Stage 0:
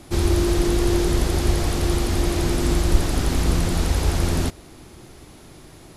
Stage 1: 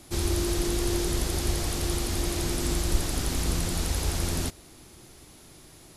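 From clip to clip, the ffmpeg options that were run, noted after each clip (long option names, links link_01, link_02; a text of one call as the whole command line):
ffmpeg -i in.wav -af "highshelf=frequency=3400:gain=9,volume=-8dB" out.wav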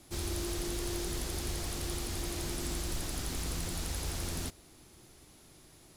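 ffmpeg -i in.wav -filter_complex "[0:a]acrossover=split=900[link_01][link_02];[link_01]asoftclip=type=tanh:threshold=-23.5dB[link_03];[link_03][link_02]amix=inputs=2:normalize=0,acrusher=bits=5:mode=log:mix=0:aa=0.000001,volume=-7dB" out.wav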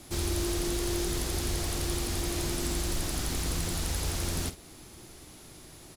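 ffmpeg -i in.wav -filter_complex "[0:a]asplit=2[link_01][link_02];[link_02]acompressor=threshold=-43dB:ratio=6,volume=-1.5dB[link_03];[link_01][link_03]amix=inputs=2:normalize=0,asplit=2[link_04][link_05];[link_05]adelay=49,volume=-12dB[link_06];[link_04][link_06]amix=inputs=2:normalize=0,volume=2.5dB" out.wav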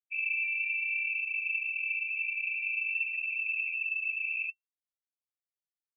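ffmpeg -i in.wav -af "afftfilt=real='re*gte(hypot(re,im),0.0708)':imag='im*gte(hypot(re,im),0.0708)':win_size=1024:overlap=0.75,lowpass=frequency=2300:width_type=q:width=0.5098,lowpass=frequency=2300:width_type=q:width=0.6013,lowpass=frequency=2300:width_type=q:width=0.9,lowpass=frequency=2300:width_type=q:width=2.563,afreqshift=-2700,volume=-1dB" out.wav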